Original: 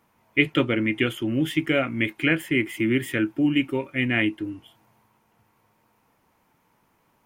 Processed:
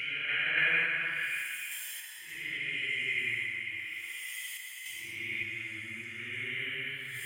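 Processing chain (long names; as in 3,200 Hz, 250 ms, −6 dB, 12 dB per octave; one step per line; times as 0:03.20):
extreme stretch with random phases 9.3×, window 0.10 s, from 0:02.24
high-pass filter 57 Hz
parametric band 150 Hz −7 dB 1.2 octaves
sample-and-hold tremolo
guitar amp tone stack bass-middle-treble 10-0-10
on a send: echo through a band-pass that steps 294 ms, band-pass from 1,200 Hz, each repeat 0.7 octaves, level −4.5 dB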